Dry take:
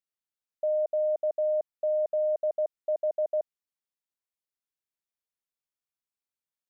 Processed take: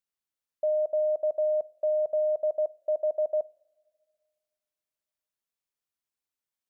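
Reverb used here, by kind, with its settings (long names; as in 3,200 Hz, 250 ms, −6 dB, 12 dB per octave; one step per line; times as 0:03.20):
coupled-rooms reverb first 0.58 s, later 2.1 s, from −17 dB, DRR 19.5 dB
level +1 dB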